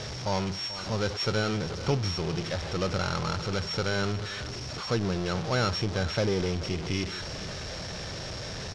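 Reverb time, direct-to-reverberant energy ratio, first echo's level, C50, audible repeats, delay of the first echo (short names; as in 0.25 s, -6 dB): none, none, -15.0 dB, none, 1, 0.436 s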